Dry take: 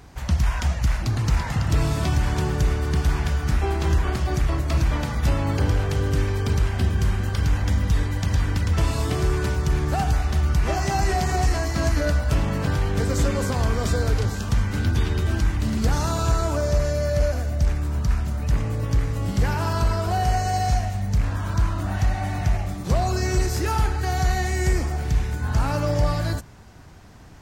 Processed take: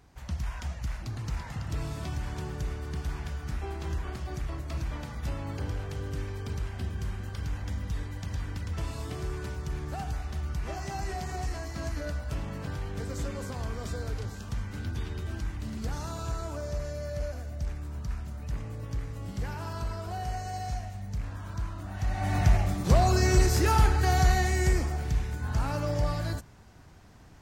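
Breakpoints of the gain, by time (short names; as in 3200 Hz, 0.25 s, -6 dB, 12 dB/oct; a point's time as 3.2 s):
21.93 s -12.5 dB
22.36 s 0 dB
24.13 s 0 dB
25.23 s -7 dB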